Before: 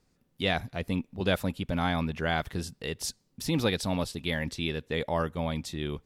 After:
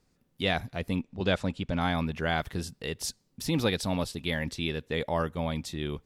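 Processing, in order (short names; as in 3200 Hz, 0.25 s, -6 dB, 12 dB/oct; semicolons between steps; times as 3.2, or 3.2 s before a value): 1.02–1.81 LPF 8000 Hz 24 dB/oct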